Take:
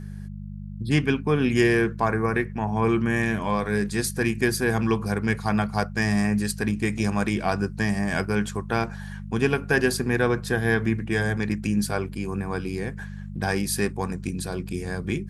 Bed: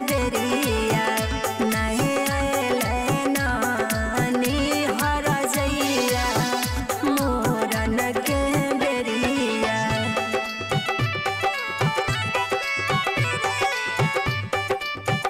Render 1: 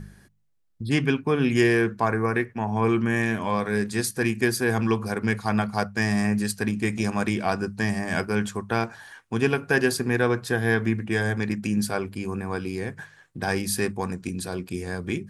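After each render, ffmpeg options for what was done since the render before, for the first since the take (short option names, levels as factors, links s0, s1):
-af "bandreject=f=50:t=h:w=4,bandreject=f=100:t=h:w=4,bandreject=f=150:t=h:w=4,bandreject=f=200:t=h:w=4"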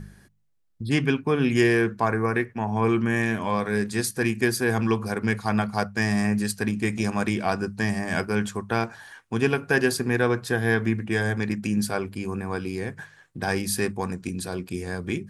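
-af anull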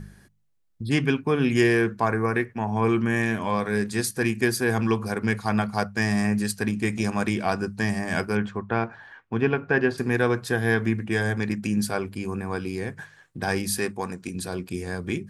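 -filter_complex "[0:a]asettb=1/sr,asplit=3[s0][s1][s2];[s0]atrim=end=8.374[s3];[s1]atrim=start=8.37:end=9.98,asetpts=PTS-STARTPTS,afade=t=in:d=0.004:c=qsin,afade=t=out:st=1.606:d=0.004:c=qsin,lowpass=2400[s4];[s2]atrim=start=9.976[s5];[s3][s4]acrossfade=d=0.004:c1=hsin:c2=qsin[s6];[s6][s5]acrossfade=d=0.004:c1=qsin:c2=hsin,asettb=1/sr,asplit=3[s7][s8][s9];[s7]atrim=end=13.784[s10];[s8]atrim=start=13.78:end=14.35,asetpts=PTS-STARTPTS,afade=t=in:d=0.004:c=qsin,afade=t=out:st=0.566:d=0.004:c=qsin,lowshelf=f=150:g=-10[s11];[s9]atrim=start=14.346[s12];[s10][s11]acrossfade=d=0.004:c1=hsin:c2=qsin[s13];[s13][s12]acrossfade=d=0.004:c1=qsin:c2=hsin"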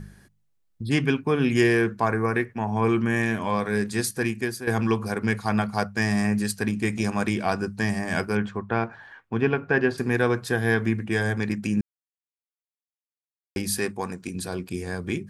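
-filter_complex "[0:a]asplit=4[s0][s1][s2][s3];[s0]atrim=end=4.67,asetpts=PTS-STARTPTS,afade=t=out:st=4.12:d=0.55:silence=0.266073[s4];[s1]atrim=start=4.67:end=11.81,asetpts=PTS-STARTPTS,afade=t=in:d=0.004:c=hsin:silence=0.266073,afade=t=out:st=7.136:d=0.004:c=hsin[s5];[s2]atrim=start=11.81:end=13.56,asetpts=PTS-STARTPTS,volume=0[s6];[s3]atrim=start=13.56,asetpts=PTS-STARTPTS,afade=t=in:d=0.004:c=hsin[s7];[s4][s5][s6][s7]concat=n=4:v=0:a=1"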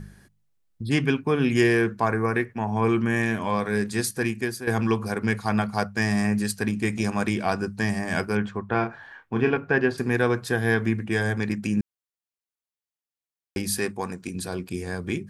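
-filter_complex "[0:a]asettb=1/sr,asplit=3[s0][s1][s2];[s0]atrim=end=8.664[s3];[s1]atrim=start=8.66:end=9.57,asetpts=PTS-STARTPTS,afade=t=in:d=0.004:c=qsin,afade=t=out:st=0.906:d=0.004:c=qsin,asplit=2[s4][s5];[s5]adelay=32,volume=0.501[s6];[s4][s6]amix=inputs=2:normalize=0,atrim=end_sample=40131[s7];[s2]atrim=start=9.566[s8];[s3][s7]acrossfade=d=0.004:c1=hsin:c2=qsin[s9];[s9][s8]acrossfade=d=0.004:c1=qsin:c2=hsin"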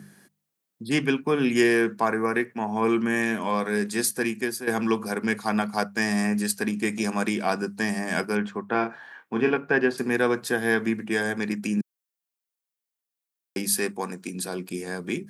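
-af "highpass=f=170:w=0.5412,highpass=f=170:w=1.3066,highshelf=f=9200:g=8"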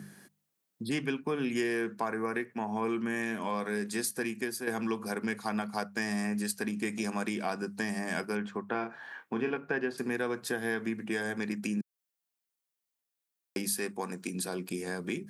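-af "acompressor=threshold=0.0224:ratio=2.5"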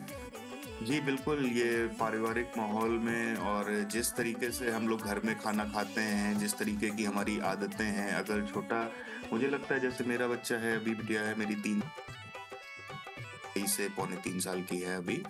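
-filter_complex "[1:a]volume=0.0794[s0];[0:a][s0]amix=inputs=2:normalize=0"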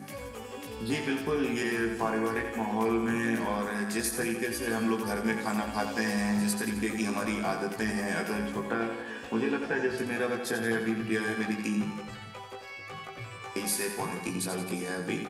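-filter_complex "[0:a]asplit=2[s0][s1];[s1]adelay=18,volume=0.708[s2];[s0][s2]amix=inputs=2:normalize=0,aecho=1:1:87|174|261|348|435|522|609:0.398|0.231|0.134|0.0777|0.0451|0.0261|0.0152"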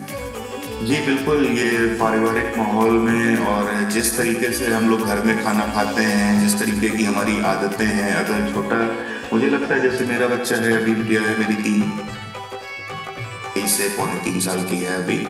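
-af "volume=3.76"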